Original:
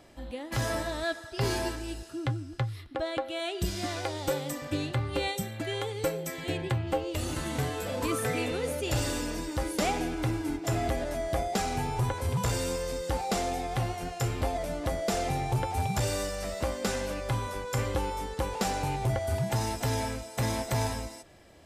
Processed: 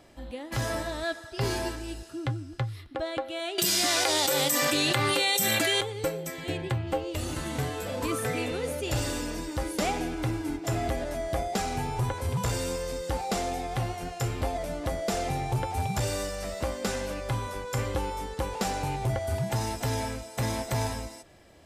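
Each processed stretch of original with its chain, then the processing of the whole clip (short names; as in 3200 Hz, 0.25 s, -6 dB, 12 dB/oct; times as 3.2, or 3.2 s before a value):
3.58–5.81 HPF 120 Hz 24 dB/oct + tilt +3 dB/oct + fast leveller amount 100%
whole clip: dry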